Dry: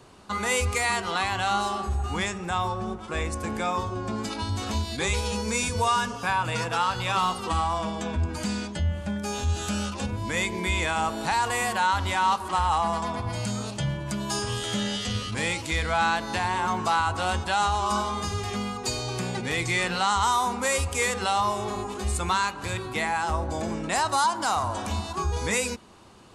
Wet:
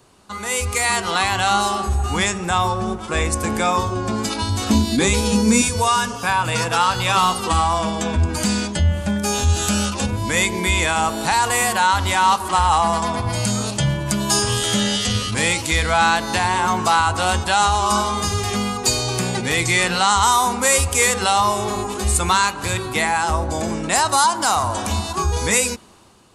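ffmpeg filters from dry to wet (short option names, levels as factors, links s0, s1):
-filter_complex "[0:a]asettb=1/sr,asplit=3[s0][s1][s2];[s0]atrim=end=4.704[s3];[s1]atrim=start=4.7:end=5.62,asetpts=PTS-STARTPTS,afade=t=in:d=0.004:c=qsin,afade=t=out:st=0.916:d=0.004:c=qsin,equalizer=f=250:w=1.5:g=14.5[s4];[s2]atrim=start=5.616[s5];[s3][s4]acrossfade=d=0.004:c1=hsin:c2=qsin[s6];[s6][s5]acrossfade=d=0.004:c1=qsin:c2=hsin,dynaudnorm=f=220:g=7:m=3.76,highshelf=f=7100:g=10,volume=0.75"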